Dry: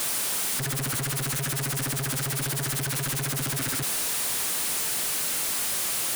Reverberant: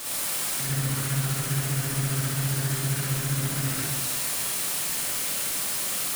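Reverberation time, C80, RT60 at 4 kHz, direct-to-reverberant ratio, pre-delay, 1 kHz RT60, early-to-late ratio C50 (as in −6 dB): 1.2 s, 0.0 dB, 1.1 s, −7.0 dB, 35 ms, 1.1 s, −4.0 dB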